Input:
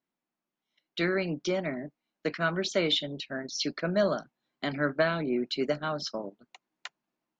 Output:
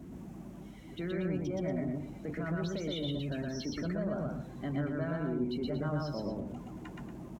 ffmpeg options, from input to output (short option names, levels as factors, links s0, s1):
-filter_complex "[0:a]aeval=exprs='val(0)+0.5*0.02*sgn(val(0))':c=same,highpass=46,aemphasis=mode=reproduction:type=riaa,afftdn=nr=13:nf=-36,alimiter=limit=0.0841:level=0:latency=1:release=19,aeval=exprs='val(0)+0.00282*(sin(2*PI*50*n/s)+sin(2*PI*2*50*n/s)/2+sin(2*PI*3*50*n/s)/3+sin(2*PI*4*50*n/s)/4+sin(2*PI*5*50*n/s)/5)':c=same,aexciter=amount=4.9:drive=1.3:freq=6100,asplit=2[s0][s1];[s1]aecho=0:1:122.4|233.2:0.891|0.316[s2];[s0][s2]amix=inputs=2:normalize=0,volume=0.376"